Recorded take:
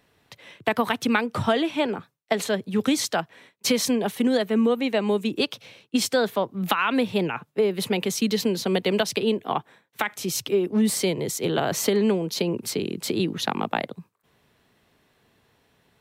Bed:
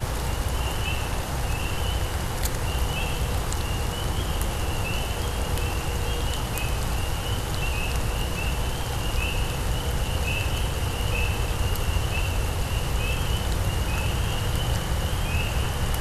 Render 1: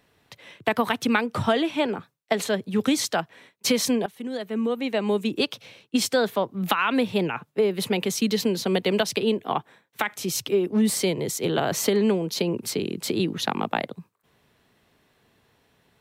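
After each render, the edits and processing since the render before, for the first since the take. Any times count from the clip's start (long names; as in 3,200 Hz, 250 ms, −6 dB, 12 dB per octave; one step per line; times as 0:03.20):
0:04.06–0:05.20: fade in, from −18 dB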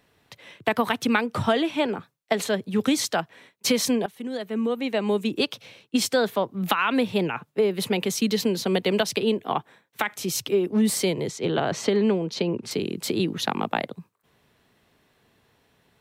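0:11.28–0:12.71: high-frequency loss of the air 92 metres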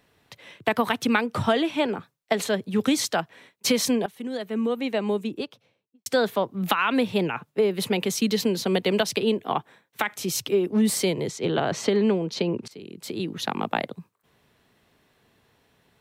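0:04.76–0:06.06: fade out and dull
0:12.68–0:13.75: fade in, from −21 dB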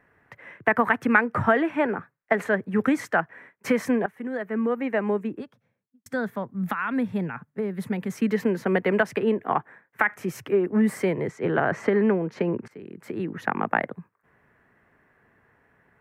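0:05.39–0:08.11: gain on a spectral selection 260–3,200 Hz −9 dB
high shelf with overshoot 2,600 Hz −13.5 dB, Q 3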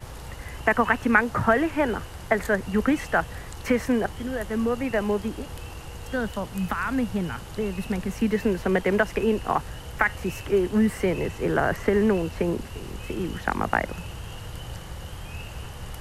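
mix in bed −11.5 dB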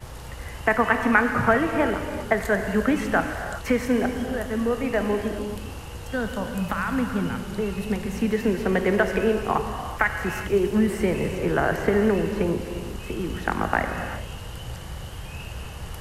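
reverb whose tail is shaped and stops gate 420 ms flat, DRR 5 dB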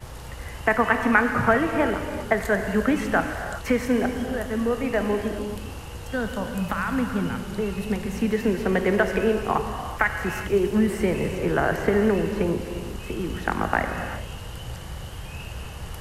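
no processing that can be heard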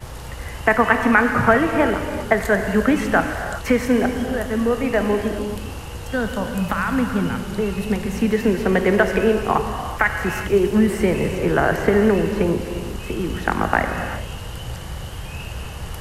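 level +4.5 dB
brickwall limiter −1 dBFS, peak gain reduction 2.5 dB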